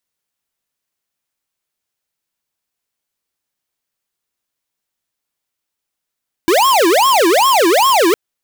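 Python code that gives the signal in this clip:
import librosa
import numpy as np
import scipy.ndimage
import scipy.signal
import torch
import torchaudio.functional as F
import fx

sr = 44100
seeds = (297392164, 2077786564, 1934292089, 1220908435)

y = fx.siren(sr, length_s=1.66, kind='wail', low_hz=326.0, high_hz=1090.0, per_s=2.5, wave='square', level_db=-11.0)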